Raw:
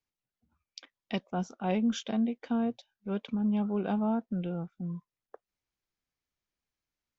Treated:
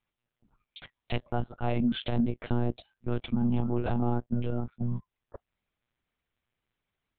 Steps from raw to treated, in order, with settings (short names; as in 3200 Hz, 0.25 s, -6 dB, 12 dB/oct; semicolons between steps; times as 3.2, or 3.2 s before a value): compressor 2.5:1, threshold -33 dBFS, peak gain reduction 6.5 dB; monotone LPC vocoder at 8 kHz 120 Hz; gain +7 dB